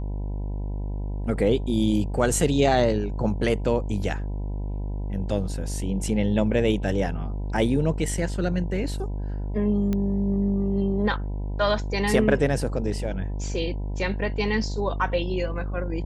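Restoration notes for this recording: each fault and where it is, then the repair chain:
buzz 50 Hz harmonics 20 -29 dBFS
9.93 pop -15 dBFS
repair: de-click; de-hum 50 Hz, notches 20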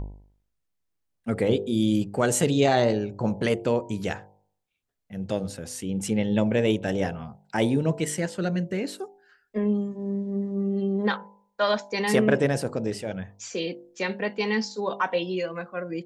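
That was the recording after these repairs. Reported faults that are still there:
none

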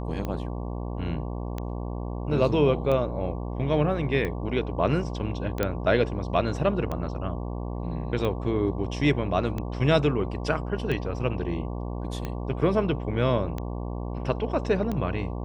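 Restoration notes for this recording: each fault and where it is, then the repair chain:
buzz 60 Hz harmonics 19 -32 dBFS
tick 45 rpm -18 dBFS
5.63 pop -11 dBFS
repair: de-click; de-hum 60 Hz, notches 19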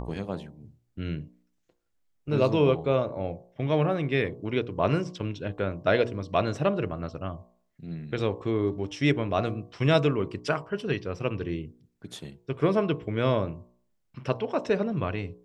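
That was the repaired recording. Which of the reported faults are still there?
none

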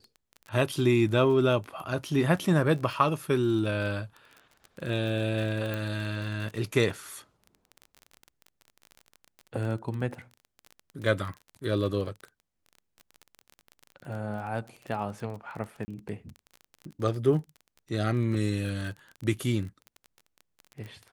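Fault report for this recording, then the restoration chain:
crackle 24/s -35 dBFS
5.74 pop
15.85–15.88 gap 30 ms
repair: de-click; interpolate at 15.85, 30 ms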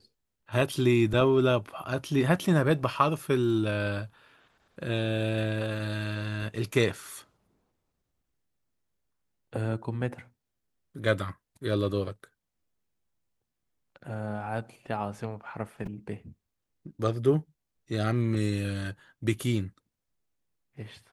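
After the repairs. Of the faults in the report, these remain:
none

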